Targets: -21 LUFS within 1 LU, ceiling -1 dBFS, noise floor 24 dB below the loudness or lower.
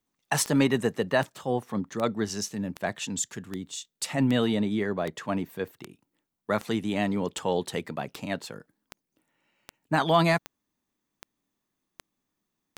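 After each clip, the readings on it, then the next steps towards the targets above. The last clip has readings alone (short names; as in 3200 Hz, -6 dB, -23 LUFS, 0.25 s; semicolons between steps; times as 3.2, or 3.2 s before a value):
clicks 17; loudness -28.5 LUFS; peak -10.0 dBFS; loudness target -21.0 LUFS
-> de-click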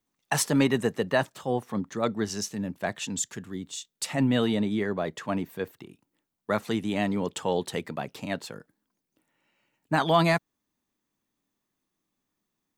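clicks 0; loudness -28.5 LUFS; peak -10.0 dBFS; loudness target -21.0 LUFS
-> gain +7.5 dB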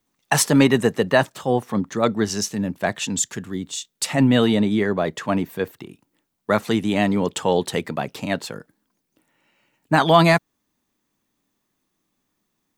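loudness -21.0 LUFS; peak -2.5 dBFS; noise floor -75 dBFS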